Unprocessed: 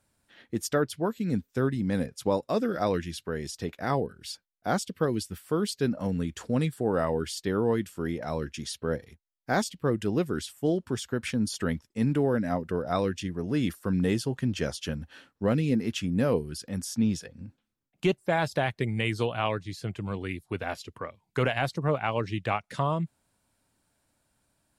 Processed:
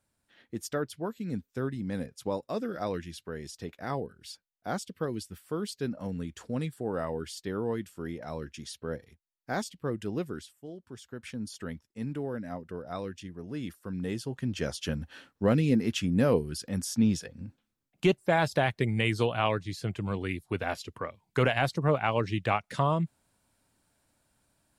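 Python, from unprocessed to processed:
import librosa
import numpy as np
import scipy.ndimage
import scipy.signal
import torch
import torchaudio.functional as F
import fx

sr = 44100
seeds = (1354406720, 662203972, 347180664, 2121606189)

y = fx.gain(x, sr, db=fx.line((10.29, -6.0), (10.67, -18.0), (11.33, -9.5), (13.91, -9.5), (14.95, 1.0)))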